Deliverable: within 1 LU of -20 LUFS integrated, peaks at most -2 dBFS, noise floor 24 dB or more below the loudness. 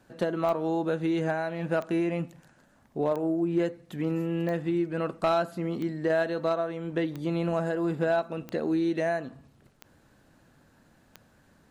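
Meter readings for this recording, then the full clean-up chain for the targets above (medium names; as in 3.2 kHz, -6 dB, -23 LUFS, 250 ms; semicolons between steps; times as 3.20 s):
clicks found 9; loudness -29.0 LUFS; peak level -16.5 dBFS; loudness target -20.0 LUFS
-> de-click; trim +9 dB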